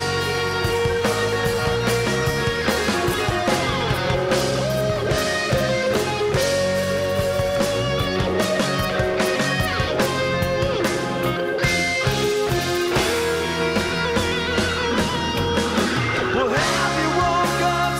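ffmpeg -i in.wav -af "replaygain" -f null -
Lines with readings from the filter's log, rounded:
track_gain = +3.2 dB
track_peak = 0.265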